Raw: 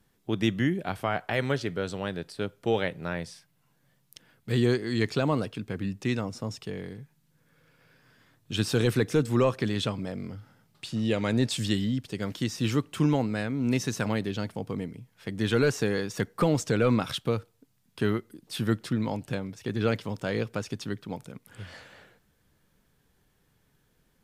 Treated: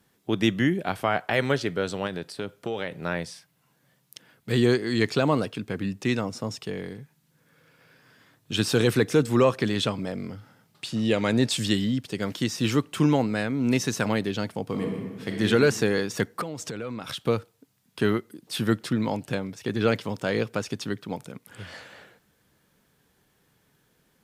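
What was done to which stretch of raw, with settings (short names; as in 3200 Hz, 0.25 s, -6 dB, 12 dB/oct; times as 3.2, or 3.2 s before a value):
2.06–2.92 compressor, threshold -29 dBFS
14.65–15.43 reverb throw, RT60 1.5 s, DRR 0.5 dB
16.41–17.23 compressor, threshold -34 dBFS
whole clip: HPF 150 Hz 6 dB/oct; gain +4.5 dB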